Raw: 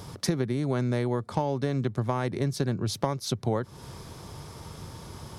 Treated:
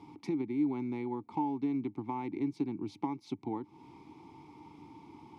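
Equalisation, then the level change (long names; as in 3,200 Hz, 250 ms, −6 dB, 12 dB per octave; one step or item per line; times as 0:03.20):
formant filter u
+4.5 dB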